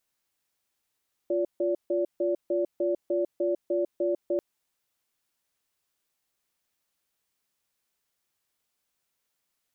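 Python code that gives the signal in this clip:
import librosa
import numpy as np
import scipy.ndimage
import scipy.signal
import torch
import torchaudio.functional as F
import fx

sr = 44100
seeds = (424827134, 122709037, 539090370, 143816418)

y = fx.cadence(sr, length_s=3.09, low_hz=350.0, high_hz=576.0, on_s=0.15, off_s=0.15, level_db=-26.0)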